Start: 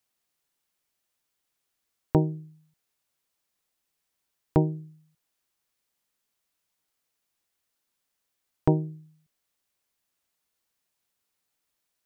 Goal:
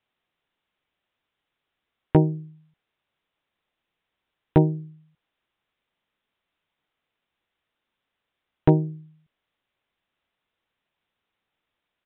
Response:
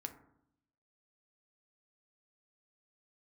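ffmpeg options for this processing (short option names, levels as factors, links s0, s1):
-af "aresample=8000,volume=3.55,asoftclip=hard,volume=0.282,aresample=44100,volume=1.78"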